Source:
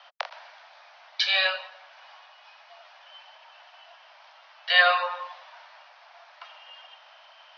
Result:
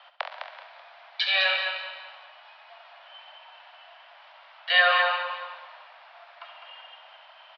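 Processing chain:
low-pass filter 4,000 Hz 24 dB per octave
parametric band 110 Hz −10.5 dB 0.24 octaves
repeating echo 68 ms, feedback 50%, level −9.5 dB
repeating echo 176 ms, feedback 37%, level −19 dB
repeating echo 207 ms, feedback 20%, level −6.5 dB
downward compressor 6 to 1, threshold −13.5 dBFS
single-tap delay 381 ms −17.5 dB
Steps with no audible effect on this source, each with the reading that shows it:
parametric band 110 Hz: nothing at its input below 480 Hz

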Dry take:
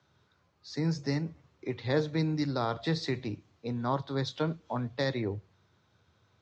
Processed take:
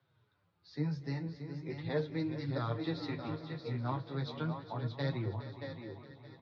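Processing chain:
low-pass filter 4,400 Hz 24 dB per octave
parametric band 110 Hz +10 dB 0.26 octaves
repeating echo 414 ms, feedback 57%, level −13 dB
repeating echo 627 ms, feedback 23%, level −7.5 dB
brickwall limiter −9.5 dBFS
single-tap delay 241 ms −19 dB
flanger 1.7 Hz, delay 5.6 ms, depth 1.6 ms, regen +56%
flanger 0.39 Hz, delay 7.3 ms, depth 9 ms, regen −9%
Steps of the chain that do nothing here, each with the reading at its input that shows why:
brickwall limiter −9.5 dBFS: peak of its input −15.5 dBFS

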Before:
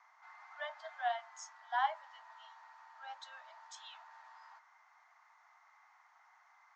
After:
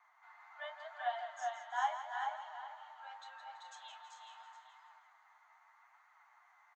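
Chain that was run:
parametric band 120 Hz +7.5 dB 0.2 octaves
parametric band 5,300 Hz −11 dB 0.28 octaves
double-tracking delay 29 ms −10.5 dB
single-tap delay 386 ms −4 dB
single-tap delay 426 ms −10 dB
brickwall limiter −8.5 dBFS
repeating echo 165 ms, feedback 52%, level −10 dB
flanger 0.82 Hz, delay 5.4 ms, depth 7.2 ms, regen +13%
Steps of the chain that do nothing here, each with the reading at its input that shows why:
parametric band 120 Hz: nothing at its input below 510 Hz
brickwall limiter −8.5 dBFS: peak of its input −19.5 dBFS

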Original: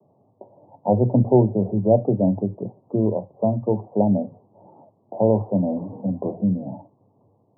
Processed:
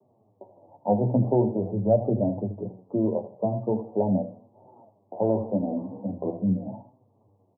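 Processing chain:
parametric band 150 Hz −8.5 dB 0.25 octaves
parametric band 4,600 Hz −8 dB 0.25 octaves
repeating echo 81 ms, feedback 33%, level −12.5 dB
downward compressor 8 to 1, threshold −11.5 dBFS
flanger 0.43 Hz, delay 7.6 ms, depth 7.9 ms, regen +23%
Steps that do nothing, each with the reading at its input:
parametric band 4,600 Hz: nothing at its input above 960 Hz

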